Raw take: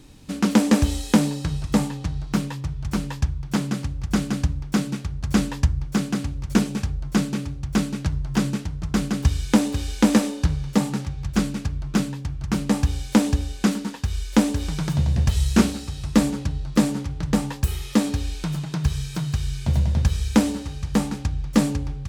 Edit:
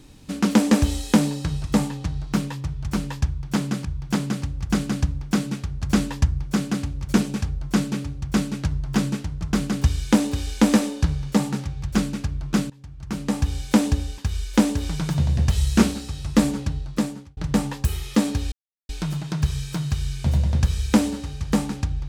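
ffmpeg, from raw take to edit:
-filter_complex "[0:a]asplit=6[a][b][c][d][e][f];[a]atrim=end=3.852[g];[b]atrim=start=3.258:end=12.11,asetpts=PTS-STARTPTS,afade=t=out:st=8.848:d=0.004:c=hsin:silence=0.0891251[h];[c]atrim=start=12.11:end=13.592,asetpts=PTS-STARTPTS,afade=t=in:d=0.89:silence=0.0891251[i];[d]atrim=start=13.968:end=17.16,asetpts=PTS-STARTPTS,afade=t=out:st=2.542:d=0.65[j];[e]atrim=start=17.16:end=18.31,asetpts=PTS-STARTPTS,afade=t=in:d=0.004:c=hsin,afade=t=out:st=1.146:d=0.004:c=hsin,apad=pad_dur=0.37[k];[f]atrim=start=18.31,asetpts=PTS-STARTPTS,afade=t=in:d=0.004:c=hsin[l];[h][i]concat=n=2:v=0:a=1[m];[g][m]acrossfade=d=0.004:c1=hsin:c2=hsin[n];[j][k][l]concat=n=3:v=0:a=1[o];[n][o]acrossfade=d=0.004:c1=hsin:c2=hsin"

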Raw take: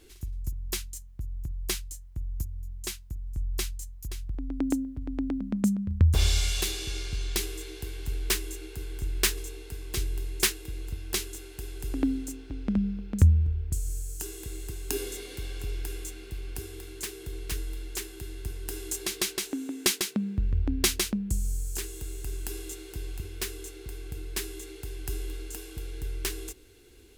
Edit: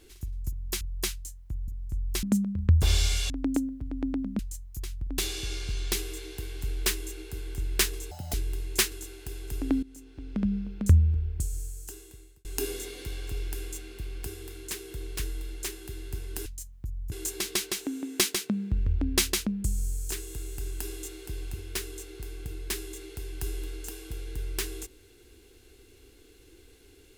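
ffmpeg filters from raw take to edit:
-filter_complex "[0:a]asplit=14[a][b][c][d][e][f][g][h][i][j][k][l][m][n];[a]atrim=end=0.812[o];[b]atrim=start=1.468:end=2.342[p];[c]atrim=start=3.118:end=3.672[q];[d]atrim=start=5.548:end=6.622[r];[e]atrim=start=4.458:end=5.552[s];[f]atrim=start=3.668:end=4.462[t];[g]atrim=start=6.618:end=9.554[u];[h]atrim=start=9.55:end=9.98,asetpts=PTS-STARTPTS,asetrate=83349,aresample=44100,atrim=end_sample=10033,asetpts=PTS-STARTPTS[v];[i]atrim=start=9.976:end=10.562[w];[j]atrim=start=11.238:end=12.15,asetpts=PTS-STARTPTS,afade=t=out:st=0.908:d=0.004:c=hsin:silence=0.112202[x];[k]atrim=start=12.15:end=14.77,asetpts=PTS-STARTPTS,afade=t=in:d=0.72:silence=0.112202,afade=t=out:st=1.53:d=1.09[y];[l]atrim=start=14.77:end=18.782,asetpts=PTS-STARTPTS,afade=t=in:d=0.004:c=hsin[z];[m]atrim=start=0.808:end=1.472[aa];[n]atrim=start=18.778[ab];[o][p]acrossfade=d=0.004:c1=hsin:c2=hsin[ac];[ac][q]acrossfade=d=0.004:c1=hsin:c2=hsin[ad];[ad][r]acrossfade=d=0.004:c1=hsin:c2=hsin[ae];[ae][s]acrossfade=d=0.004:c1=hsin:c2=hsin[af];[af][t]acrossfade=d=0.004:c1=hsin:c2=hsin[ag];[ag][u]acrossfade=d=0.004:c1=hsin:c2=hsin[ah];[ah][v]acrossfade=d=0.004:c1=hsin:c2=hsin[ai];[ai][w]acrossfade=d=0.004:c1=hsin:c2=hsin[aj];[x][y][z]concat=n=3:v=0:a=1[ak];[aj][ak]acrossfade=d=0.004:c1=hsin:c2=hsin[al];[al][aa]acrossfade=d=0.004:c1=hsin:c2=hsin[am];[am][ab]acrossfade=d=0.004:c1=hsin:c2=hsin"

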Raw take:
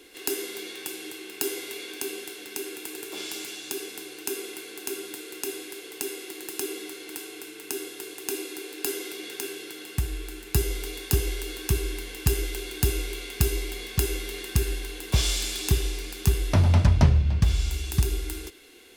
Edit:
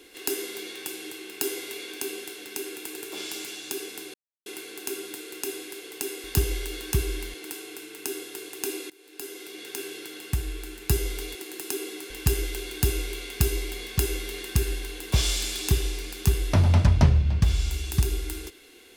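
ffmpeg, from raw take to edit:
-filter_complex "[0:a]asplit=8[a][b][c][d][e][f][g][h];[a]atrim=end=4.14,asetpts=PTS-STARTPTS,afade=t=out:st=4.136:d=0.004:c=hsin[i];[b]atrim=start=4.14:end=4.46,asetpts=PTS-STARTPTS,volume=0[j];[c]atrim=start=4.46:end=6.242,asetpts=PTS-STARTPTS,afade=t=in:d=0.004:c=hsin[k];[d]atrim=start=10.998:end=12.102[l];[e]atrim=start=6.988:end=8.55,asetpts=PTS-STARTPTS,afade=t=out:st=1.558:d=0.004:c=hsin:silence=0.0749894[m];[f]atrim=start=8.55:end=11.002,asetpts=PTS-STARTPTS,afade=t=in:d=1.03:silence=0.0749894[n];[g]atrim=start=6.238:end=6.992[o];[h]atrim=start=12.098[p];[i][j][k]concat=n=3:v=0:a=1[q];[q][l]acrossfade=d=0.004:c1=hsin:c2=hsin[r];[m][n]concat=n=2:v=0:a=1[s];[r][s]acrossfade=d=0.004:c1=hsin:c2=hsin[t];[t][o]acrossfade=d=0.004:c1=hsin:c2=hsin[u];[u][p]acrossfade=d=0.004:c1=hsin:c2=hsin"

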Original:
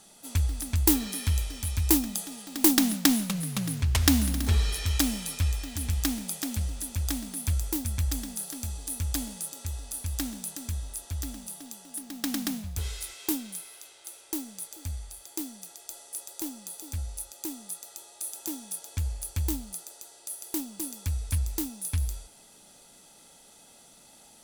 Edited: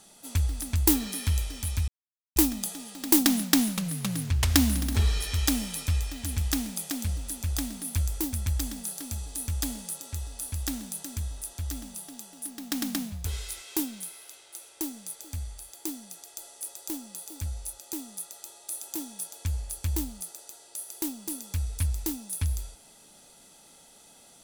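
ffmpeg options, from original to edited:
-filter_complex "[0:a]asplit=2[a][b];[a]atrim=end=1.88,asetpts=PTS-STARTPTS,afade=t=out:st=1.876:d=0.004:c=hsin,apad=pad_dur=0.48[c];[b]atrim=start=1.88,asetpts=PTS-STARTPTS,afade=t=in:d=0.004:c=hsin[d];[c][d]concat=n=2:v=0:a=1"

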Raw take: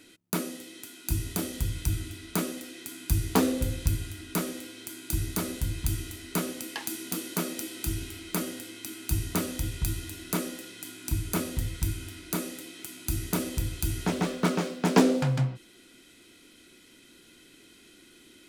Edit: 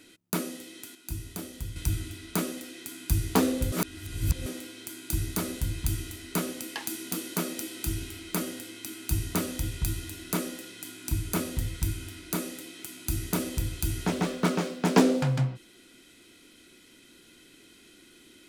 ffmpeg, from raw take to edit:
-filter_complex "[0:a]asplit=5[a][b][c][d][e];[a]atrim=end=0.952[f];[b]atrim=start=0.948:end=1.762,asetpts=PTS-STARTPTS,volume=-7dB[g];[c]atrim=start=1.758:end=3.722[h];[d]atrim=start=3.718:end=4.462,asetpts=PTS-STARTPTS,areverse[i];[e]atrim=start=4.458[j];[f][g]acrossfade=d=0.004:c1=hsin:c2=hsin[k];[k][h]acrossfade=d=0.004:c1=hsin:c2=hsin[l];[l][i]acrossfade=d=0.004:c1=hsin:c2=hsin[m];[m][j]acrossfade=d=0.004:c1=hsin:c2=hsin"

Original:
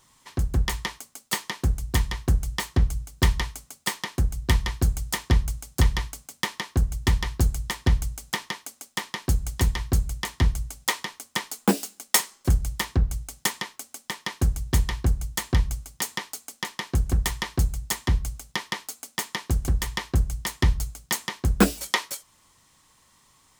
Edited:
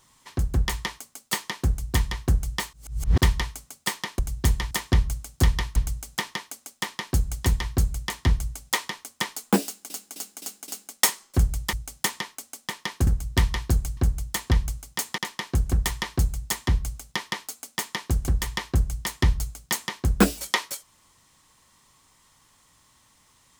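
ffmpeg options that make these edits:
-filter_complex "[0:a]asplit=14[a][b][c][d][e][f][g][h][i][j][k][l][m][n];[a]atrim=end=2.732[o];[b]atrim=start=2.728:end=3.212,asetpts=PTS-STARTPTS,areverse[p];[c]atrim=start=3.208:end=4.192[q];[d]atrim=start=14.478:end=15.002[r];[e]atrim=start=5.088:end=6.142[s];[f]atrim=start=7.908:end=12.052[t];[g]atrim=start=11.788:end=12.052[u];[h]atrim=start=11.788:end=12.052[v];[i]atrim=start=11.788:end=12.052[w];[j]atrim=start=11.788:end=12.842[x];[k]atrim=start=13.138:end=14.482[y];[l]atrim=start=4.188:end=5.092[z];[m]atrim=start=14.998:end=16.212[aa];[n]atrim=start=16.578[ab];[o][p]acrossfade=d=0.004:c1=hsin:c2=hsin[ac];[ac][q]acrossfade=d=0.004:c1=hsin:c2=hsin[ad];[ad][r]acrossfade=d=0.004:c1=hsin:c2=hsin[ae];[ae][s]acrossfade=d=0.004:c1=hsin:c2=hsin[af];[af][t]acrossfade=d=0.004:c1=hsin:c2=hsin[ag];[ag][u]acrossfade=d=0.004:c1=hsin:c2=hsin[ah];[ah][v]acrossfade=d=0.004:c1=hsin:c2=hsin[ai];[ai][w]acrossfade=d=0.004:c1=hsin:c2=hsin[aj];[aj][x]acrossfade=d=0.004:c1=hsin:c2=hsin[ak];[ak][y]acrossfade=d=0.004:c1=hsin:c2=hsin[al];[al][z]acrossfade=d=0.004:c1=hsin:c2=hsin[am];[am][aa]acrossfade=d=0.004:c1=hsin:c2=hsin[an];[an][ab]acrossfade=d=0.004:c1=hsin:c2=hsin"

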